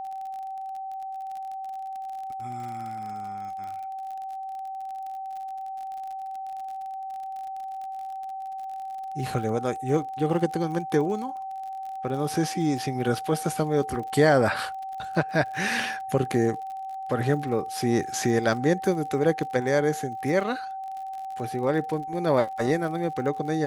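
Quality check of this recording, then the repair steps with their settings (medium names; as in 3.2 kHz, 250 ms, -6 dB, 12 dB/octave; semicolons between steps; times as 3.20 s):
crackle 46 per s -35 dBFS
whine 770 Hz -32 dBFS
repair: de-click; band-stop 770 Hz, Q 30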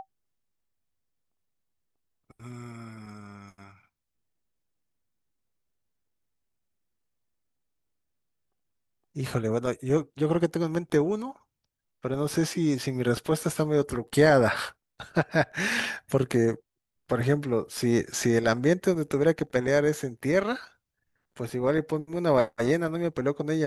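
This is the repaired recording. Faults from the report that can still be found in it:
nothing left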